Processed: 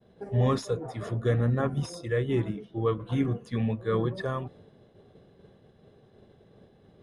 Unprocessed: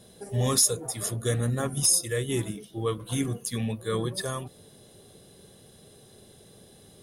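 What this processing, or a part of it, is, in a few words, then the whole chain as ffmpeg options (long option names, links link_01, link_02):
hearing-loss simulation: -af "lowpass=1900,agate=range=-33dB:threshold=-49dB:ratio=3:detection=peak,volume=2dB"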